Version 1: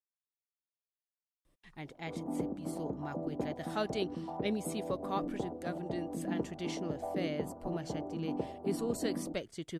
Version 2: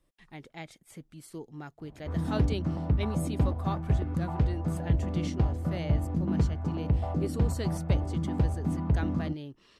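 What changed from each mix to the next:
speech: entry -1.45 s; background: remove Butterworth band-pass 480 Hz, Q 0.88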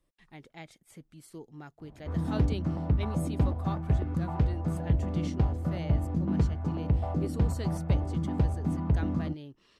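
speech -3.5 dB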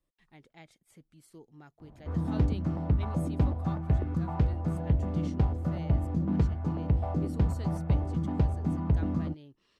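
speech -6.5 dB

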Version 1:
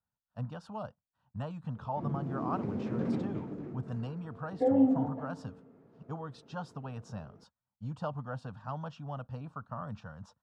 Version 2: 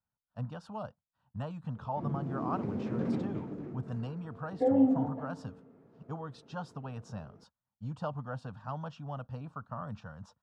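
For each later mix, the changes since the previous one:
no change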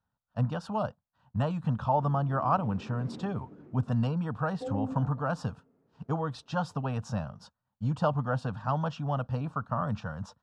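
speech +9.5 dB; background -10.0 dB

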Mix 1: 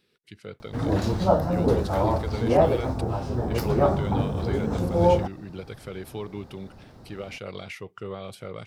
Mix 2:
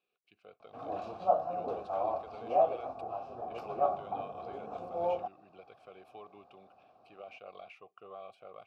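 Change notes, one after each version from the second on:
master: add vowel filter a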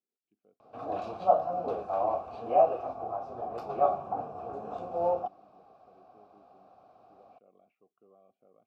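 speech: add band-pass filter 250 Hz, Q 2.6; background +4.0 dB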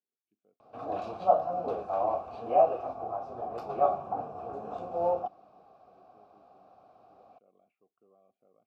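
speech -3.5 dB

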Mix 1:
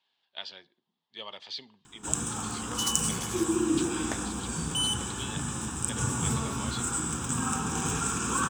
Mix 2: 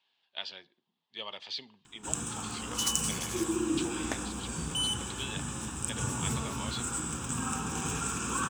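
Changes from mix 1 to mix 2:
first sound -4.0 dB; master: add peaking EQ 2.6 kHz +4 dB 0.42 oct

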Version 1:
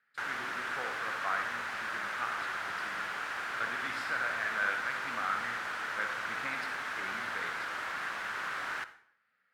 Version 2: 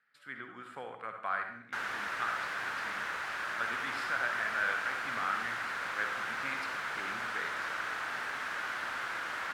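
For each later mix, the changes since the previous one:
background: entry +1.55 s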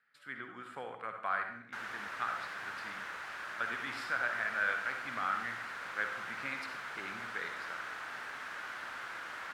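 background -6.0 dB

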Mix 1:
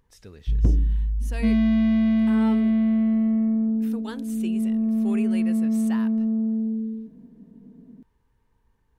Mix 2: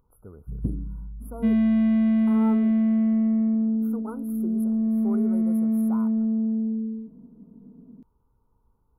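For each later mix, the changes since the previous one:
speech: add brick-wall FIR band-stop 1.5–10 kHz; first sound: add band-pass filter 190 Hz, Q 1.3; second sound: add distance through air 410 m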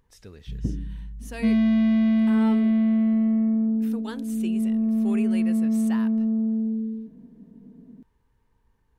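speech: remove brick-wall FIR band-stop 1.5–10 kHz; second sound: remove distance through air 410 m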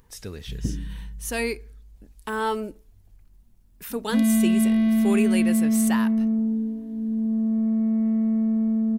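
speech +8.5 dB; second sound: entry +2.70 s; master: add treble shelf 7.1 kHz +9.5 dB

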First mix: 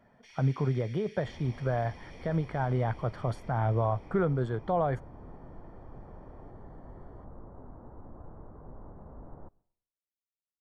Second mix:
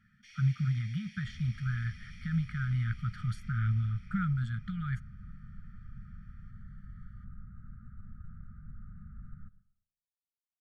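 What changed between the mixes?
second sound: send +10.5 dB; master: add brick-wall FIR band-stop 230–1200 Hz

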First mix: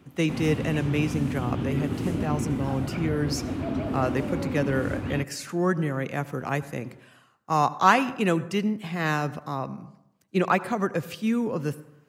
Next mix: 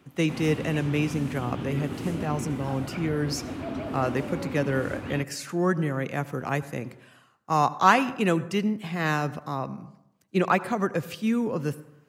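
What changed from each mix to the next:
background: add bass shelf 330 Hz -7.5 dB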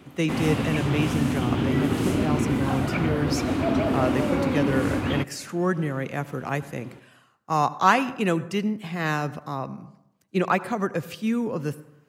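background +10.0 dB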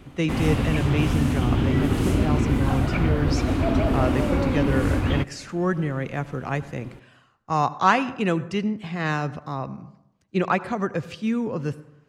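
speech: add low-pass 6.4 kHz 12 dB/octave; master: remove high-pass 130 Hz 12 dB/octave

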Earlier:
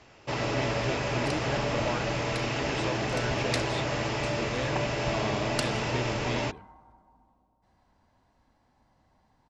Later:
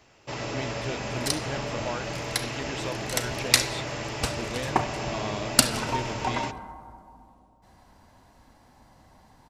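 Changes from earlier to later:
first sound -4.0 dB; second sound +11.0 dB; master: remove distance through air 68 m

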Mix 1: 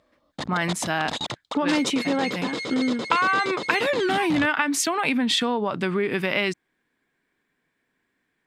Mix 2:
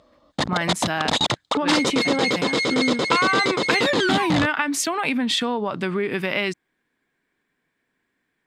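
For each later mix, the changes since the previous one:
background +9.0 dB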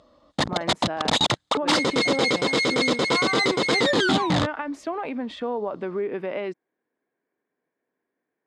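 speech: add band-pass filter 520 Hz, Q 1.3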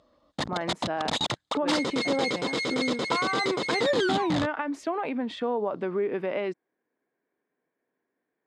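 background -7.0 dB

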